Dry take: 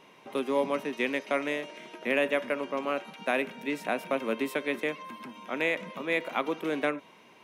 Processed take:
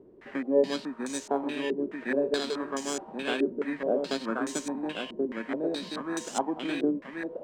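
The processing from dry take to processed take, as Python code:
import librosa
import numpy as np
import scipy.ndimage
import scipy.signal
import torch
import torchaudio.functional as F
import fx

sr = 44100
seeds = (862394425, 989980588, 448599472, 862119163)

p1 = fx.bit_reversed(x, sr, seeds[0], block=16)
p2 = fx.quant_dither(p1, sr, seeds[1], bits=6, dither='triangular')
p3 = p1 + (p2 * librosa.db_to_amplitude(-10.0))
p4 = p3 + 10.0 ** (-4.0 / 20.0) * np.pad(p3, (int(1082 * sr / 1000.0), 0))[:len(p3)]
p5 = fx.formant_shift(p4, sr, semitones=-4)
p6 = fx.filter_held_lowpass(p5, sr, hz=4.7, low_hz=380.0, high_hz=6500.0)
y = p6 * librosa.db_to_amplitude(-4.0)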